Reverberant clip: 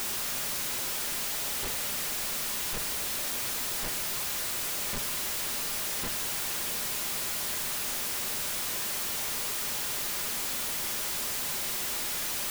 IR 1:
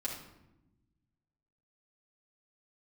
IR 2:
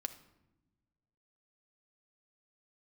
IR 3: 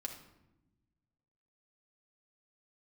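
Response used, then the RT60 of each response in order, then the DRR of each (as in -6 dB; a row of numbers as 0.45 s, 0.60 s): 2; 0.95 s, no single decay rate, 0.95 s; -6.0 dB, 8.0 dB, 1.0 dB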